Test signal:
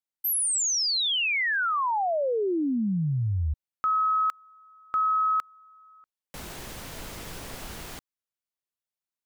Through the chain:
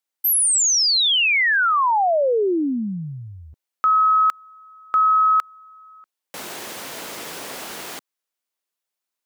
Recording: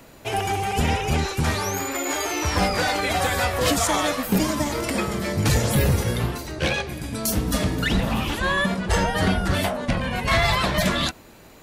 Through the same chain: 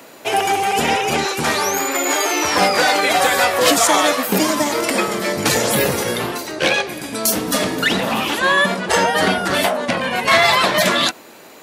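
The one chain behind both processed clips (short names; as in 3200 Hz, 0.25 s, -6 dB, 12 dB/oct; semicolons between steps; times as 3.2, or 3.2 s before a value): HPF 300 Hz 12 dB/oct; gain +8 dB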